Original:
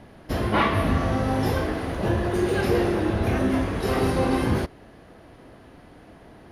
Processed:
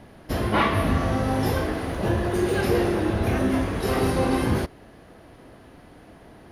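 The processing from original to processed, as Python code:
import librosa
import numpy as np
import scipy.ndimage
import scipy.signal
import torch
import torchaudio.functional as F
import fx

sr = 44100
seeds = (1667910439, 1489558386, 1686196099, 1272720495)

y = fx.high_shelf(x, sr, hz=8900.0, db=5.5)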